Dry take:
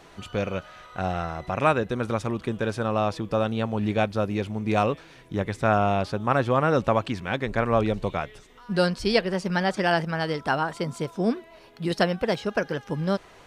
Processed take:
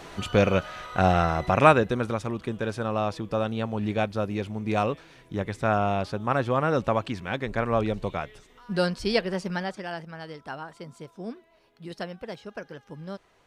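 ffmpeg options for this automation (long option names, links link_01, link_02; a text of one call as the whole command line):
ffmpeg -i in.wav -af "volume=7dB,afade=type=out:start_time=1.39:duration=0.77:silence=0.334965,afade=type=out:start_time=9.39:duration=0.44:silence=0.316228" out.wav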